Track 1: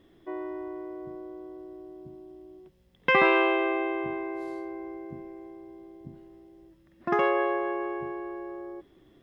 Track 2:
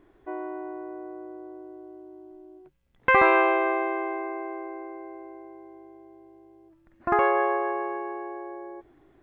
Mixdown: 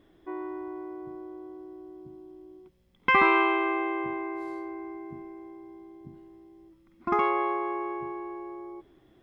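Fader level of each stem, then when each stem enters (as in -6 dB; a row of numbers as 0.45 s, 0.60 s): -3.0 dB, -6.0 dB; 0.00 s, 0.00 s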